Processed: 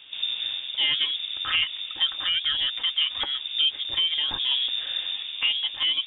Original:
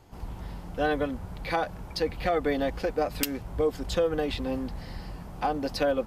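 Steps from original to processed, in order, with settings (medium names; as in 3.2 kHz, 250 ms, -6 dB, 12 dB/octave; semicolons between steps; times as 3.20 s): bass shelf 390 Hz -4 dB; in parallel at +0.5 dB: peak limiter -22.5 dBFS, peak gain reduction 11 dB; on the sum: gain riding within 4 dB 0.5 s; distance through air 240 m; frequency inversion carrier 3.6 kHz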